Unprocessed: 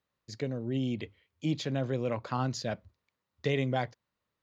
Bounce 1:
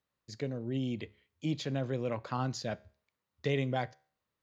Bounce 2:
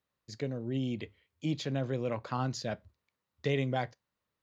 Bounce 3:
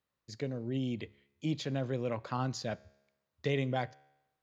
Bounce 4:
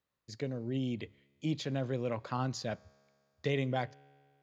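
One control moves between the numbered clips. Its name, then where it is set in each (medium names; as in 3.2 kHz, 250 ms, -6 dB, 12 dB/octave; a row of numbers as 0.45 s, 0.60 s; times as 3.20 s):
feedback comb, decay: 0.45 s, 0.19 s, 0.96 s, 2.2 s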